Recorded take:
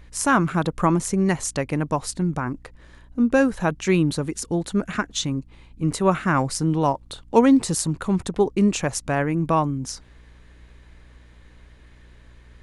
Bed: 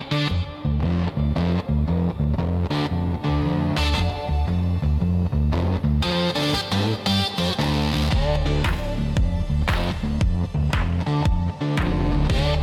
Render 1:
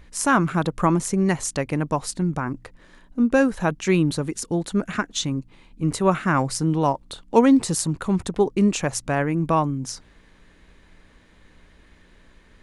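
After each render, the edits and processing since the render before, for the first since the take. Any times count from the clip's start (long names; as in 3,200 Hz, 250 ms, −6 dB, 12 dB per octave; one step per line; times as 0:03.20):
hum removal 60 Hz, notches 2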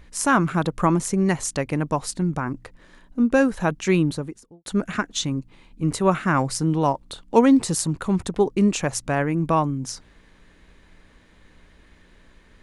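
0:03.93–0:04.66: fade out and dull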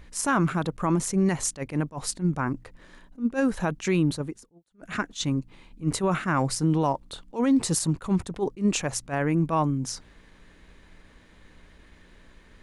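brickwall limiter −14.5 dBFS, peak gain reduction 12 dB
level that may rise only so fast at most 290 dB per second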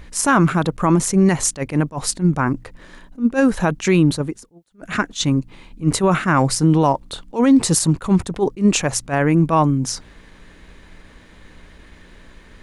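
level +8.5 dB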